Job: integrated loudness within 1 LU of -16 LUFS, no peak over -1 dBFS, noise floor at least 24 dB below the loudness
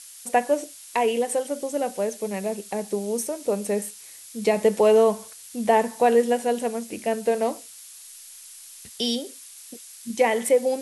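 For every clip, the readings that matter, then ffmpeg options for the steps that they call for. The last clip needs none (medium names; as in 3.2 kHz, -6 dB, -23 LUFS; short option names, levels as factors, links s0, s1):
noise floor -45 dBFS; noise floor target -48 dBFS; loudness -24.0 LUFS; peak level -7.5 dBFS; loudness target -16.0 LUFS
-> -af "afftdn=nr=6:nf=-45"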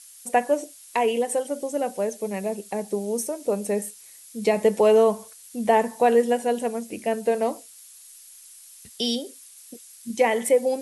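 noise floor -48 dBFS; loudness -24.0 LUFS; peak level -7.5 dBFS; loudness target -16.0 LUFS
-> -af "volume=2.51,alimiter=limit=0.891:level=0:latency=1"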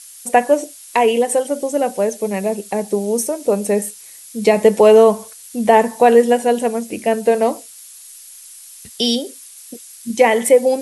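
loudness -16.0 LUFS; peak level -1.0 dBFS; noise floor -40 dBFS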